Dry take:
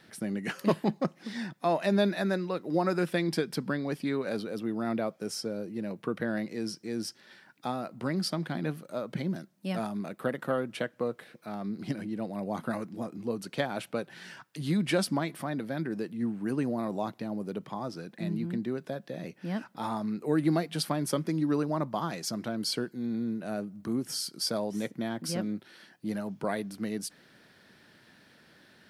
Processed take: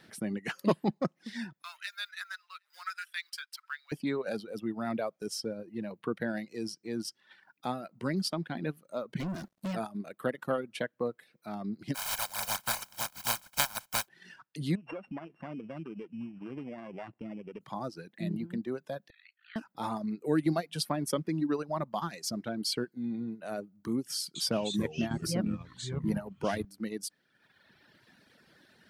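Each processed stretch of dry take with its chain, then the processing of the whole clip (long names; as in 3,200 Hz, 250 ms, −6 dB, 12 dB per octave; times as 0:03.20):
0:01.62–0:03.92: mu-law and A-law mismatch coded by A + Chebyshev high-pass filter 1,300 Hz, order 4 + single-tap delay 763 ms −23.5 dB
0:09.20–0:09.74: high-shelf EQ 11,000 Hz −11 dB + downward compressor, threshold −38 dBFS + leveller curve on the samples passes 5
0:11.94–0:14.07: compressing power law on the bin magnitudes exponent 0.11 + parametric band 1,100 Hz +12 dB 0.48 octaves + comb filter 1.3 ms, depth 80%
0:14.75–0:17.61: samples sorted by size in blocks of 16 samples + low-pass filter 1,600 Hz + downward compressor 4 to 1, threshold −35 dBFS
0:19.10–0:19.56: linear-phase brick-wall band-pass 1,200–4,600 Hz + ring modulation 28 Hz
0:24.18–0:26.65: low-shelf EQ 210 Hz +8 dB + delay with pitch and tempo change per echo 170 ms, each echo −5 semitones, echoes 2, each echo −6 dB
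whole clip: reverb reduction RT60 1.5 s; transient designer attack −1 dB, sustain −5 dB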